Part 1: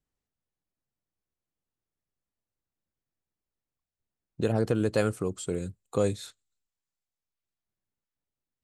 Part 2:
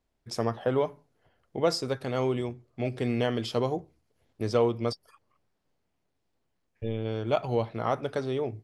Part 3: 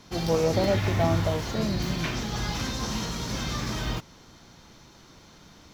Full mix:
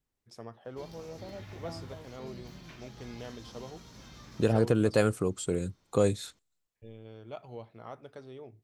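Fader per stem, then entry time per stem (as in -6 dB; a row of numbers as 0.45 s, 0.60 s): +1.0 dB, -16.5 dB, -20.0 dB; 0.00 s, 0.00 s, 0.65 s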